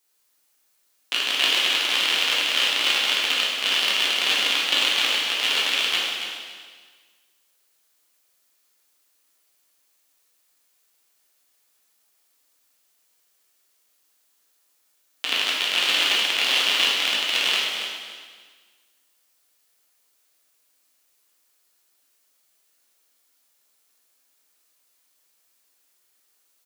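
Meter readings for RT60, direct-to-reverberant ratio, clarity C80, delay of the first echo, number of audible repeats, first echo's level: 1.6 s, -6.0 dB, 1.5 dB, 280 ms, 1, -9.0 dB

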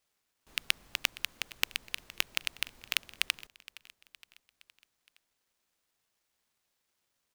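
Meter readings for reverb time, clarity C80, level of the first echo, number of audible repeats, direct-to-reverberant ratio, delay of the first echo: no reverb, no reverb, -20.0 dB, 3, no reverb, 466 ms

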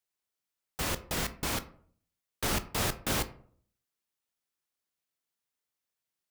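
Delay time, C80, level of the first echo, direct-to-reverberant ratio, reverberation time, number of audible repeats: no echo, 19.5 dB, no echo, 11.0 dB, 0.55 s, no echo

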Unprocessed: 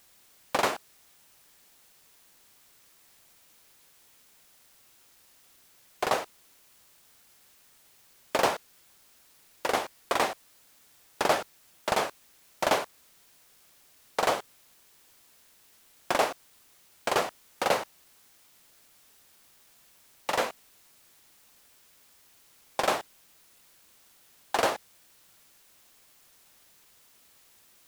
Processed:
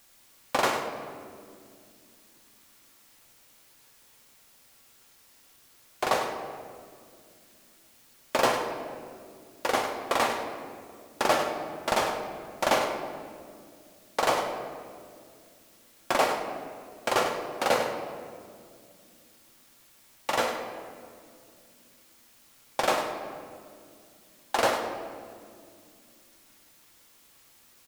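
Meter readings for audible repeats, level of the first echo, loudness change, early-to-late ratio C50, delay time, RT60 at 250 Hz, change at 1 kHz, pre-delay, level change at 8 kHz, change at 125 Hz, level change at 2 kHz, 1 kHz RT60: 1, -10.0 dB, +0.5 dB, 4.5 dB, 101 ms, 4.0 s, +2.0 dB, 4 ms, +1.5 dB, +2.5 dB, +2.0 dB, 1.9 s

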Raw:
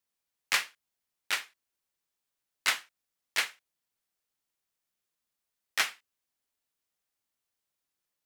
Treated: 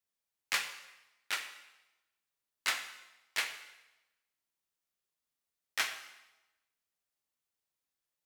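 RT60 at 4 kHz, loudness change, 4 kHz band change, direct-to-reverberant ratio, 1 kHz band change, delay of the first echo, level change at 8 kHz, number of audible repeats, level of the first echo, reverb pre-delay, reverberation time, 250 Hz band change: 0.95 s, -5.0 dB, -4.0 dB, 6.5 dB, -4.0 dB, no echo, -4.0 dB, no echo, no echo, 6 ms, 1.0 s, -4.0 dB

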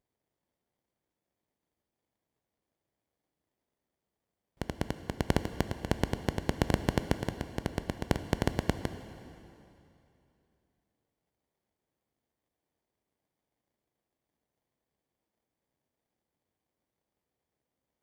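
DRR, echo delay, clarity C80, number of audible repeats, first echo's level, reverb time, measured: 10.0 dB, no echo, 11.5 dB, no echo, no echo, 2.9 s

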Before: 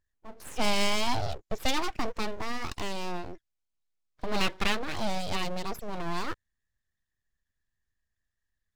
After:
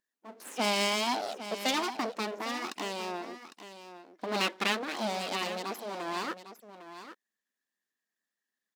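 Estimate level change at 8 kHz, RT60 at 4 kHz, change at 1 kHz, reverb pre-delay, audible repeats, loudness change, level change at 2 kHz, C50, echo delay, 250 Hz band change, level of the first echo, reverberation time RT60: +0.5 dB, no reverb, 0.0 dB, no reverb, 1, 0.0 dB, +0.5 dB, no reverb, 804 ms, -1.5 dB, -12.0 dB, no reverb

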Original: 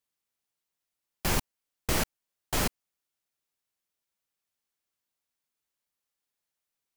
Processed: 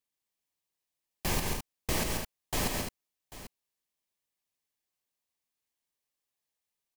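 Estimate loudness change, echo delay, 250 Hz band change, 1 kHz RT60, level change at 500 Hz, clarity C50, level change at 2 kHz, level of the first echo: -2.5 dB, 139 ms, -1.0 dB, no reverb, -1.0 dB, no reverb, -2.0 dB, -5.5 dB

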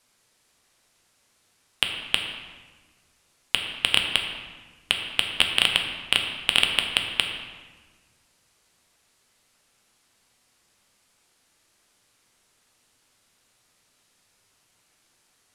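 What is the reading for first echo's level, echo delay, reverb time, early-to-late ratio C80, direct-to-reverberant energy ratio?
no echo, no echo, 1.4 s, 6.5 dB, 2.5 dB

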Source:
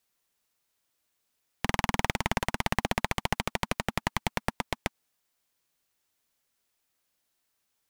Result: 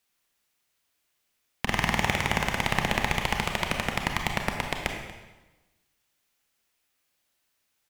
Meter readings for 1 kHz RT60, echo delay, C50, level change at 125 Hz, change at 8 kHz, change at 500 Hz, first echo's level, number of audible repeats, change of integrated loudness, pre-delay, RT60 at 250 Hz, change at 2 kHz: 1.1 s, 236 ms, 4.5 dB, +2.5 dB, +2.5 dB, +2.0 dB, -18.0 dB, 1, +3.5 dB, 27 ms, 1.2 s, +5.0 dB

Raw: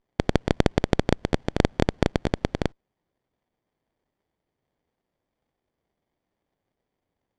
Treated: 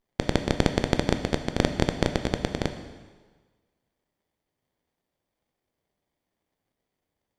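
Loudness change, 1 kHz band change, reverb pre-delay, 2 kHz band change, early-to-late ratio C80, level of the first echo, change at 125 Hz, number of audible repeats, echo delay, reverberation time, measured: -1.5 dB, -1.5 dB, 6 ms, 0.0 dB, 11.0 dB, no echo, -2.0 dB, no echo, no echo, 1.4 s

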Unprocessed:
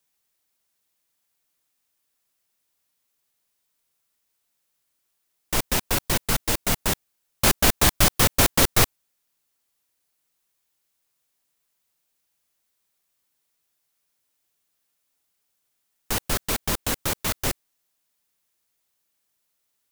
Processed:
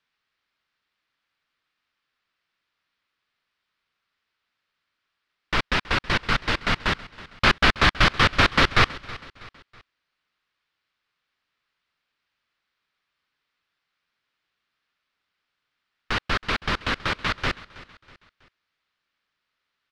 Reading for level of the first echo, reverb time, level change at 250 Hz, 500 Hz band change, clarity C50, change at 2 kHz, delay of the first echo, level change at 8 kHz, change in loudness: -19.0 dB, no reverb, -0.5 dB, -1.0 dB, no reverb, +7.0 dB, 323 ms, -17.0 dB, 0.0 dB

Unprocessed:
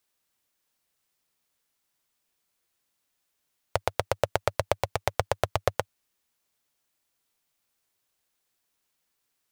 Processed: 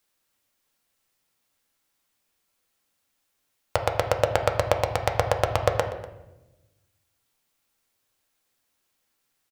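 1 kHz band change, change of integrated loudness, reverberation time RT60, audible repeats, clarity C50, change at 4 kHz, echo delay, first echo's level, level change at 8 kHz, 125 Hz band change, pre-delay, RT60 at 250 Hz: +4.5 dB, +4.5 dB, 1.0 s, 1, 8.5 dB, +3.0 dB, 244 ms, -20.0 dB, +2.5 dB, +5.5 dB, 4 ms, 1.5 s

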